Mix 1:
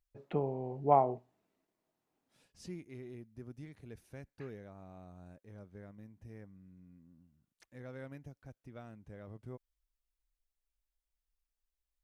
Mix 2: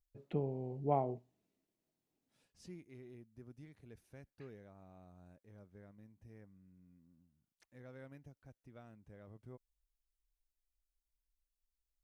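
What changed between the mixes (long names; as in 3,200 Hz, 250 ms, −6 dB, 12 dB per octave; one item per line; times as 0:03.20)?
first voice: add parametric band 1,100 Hz −11.5 dB 2.1 octaves
second voice −6.5 dB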